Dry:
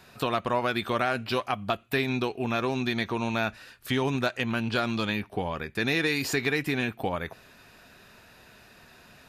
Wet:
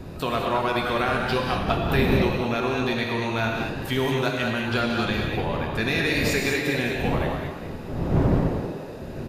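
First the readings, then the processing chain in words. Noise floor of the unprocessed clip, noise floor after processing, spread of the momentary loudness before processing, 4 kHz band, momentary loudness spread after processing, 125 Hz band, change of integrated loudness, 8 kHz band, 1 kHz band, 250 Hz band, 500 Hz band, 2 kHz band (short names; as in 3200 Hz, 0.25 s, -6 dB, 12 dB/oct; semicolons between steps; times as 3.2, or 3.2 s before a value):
-55 dBFS, -36 dBFS, 6 LU, +3.5 dB, 7 LU, +8.5 dB, +4.0 dB, +3.5 dB, +4.0 dB, +5.0 dB, +5.0 dB, +3.5 dB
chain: wind noise 280 Hz -32 dBFS; frequency-shifting echo 0.203 s, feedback 43%, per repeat +120 Hz, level -10 dB; non-linear reverb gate 0.26 s flat, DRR 0 dB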